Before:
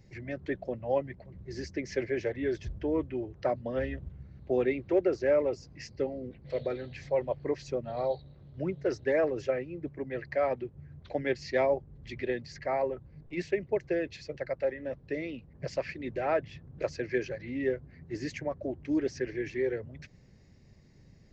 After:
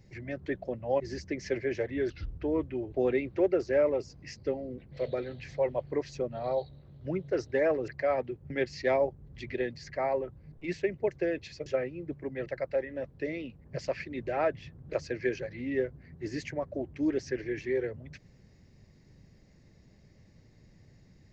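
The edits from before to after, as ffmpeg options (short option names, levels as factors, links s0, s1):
-filter_complex "[0:a]asplit=9[s0][s1][s2][s3][s4][s5][s6][s7][s8];[s0]atrim=end=1.002[s9];[s1]atrim=start=1.458:end=2.564[s10];[s2]atrim=start=2.56:end=2.82,asetpts=PTS-STARTPTS,asetrate=35721,aresample=44100[s11];[s3]atrim=start=2.816:end=3.322[s12];[s4]atrim=start=4.448:end=9.412[s13];[s5]atrim=start=10.208:end=10.832[s14];[s6]atrim=start=11.188:end=14.352[s15];[s7]atrim=start=9.408:end=10.212[s16];[s8]atrim=start=14.348[s17];[s9][s10]acrossfade=d=0.004:c1=hsin:c2=hsin[s18];[s18][s11]acrossfade=d=0.004:c1=hsin:c2=hsin[s19];[s19][s12]acrossfade=d=0.004:c1=hsin:c2=hsin[s20];[s20][s13]acrossfade=d=0.004:c1=hsin:c2=hsin[s21];[s21][s14]acrossfade=d=0.004:c1=hsin:c2=hsin[s22];[s22][s15]acrossfade=d=0.004:c1=hsin:c2=hsin[s23];[s23][s16]acrossfade=d=0.004:c1=hsin:c2=hsin[s24];[s24][s17]acrossfade=d=0.004:c1=hsin:c2=hsin"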